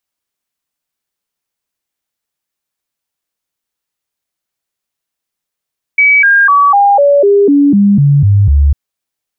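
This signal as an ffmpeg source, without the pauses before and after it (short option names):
-f lavfi -i "aevalsrc='0.631*clip(min(mod(t,0.25),0.25-mod(t,0.25))/0.005,0,1)*sin(2*PI*2280*pow(2,-floor(t/0.25)/2)*mod(t,0.25))':d=2.75:s=44100"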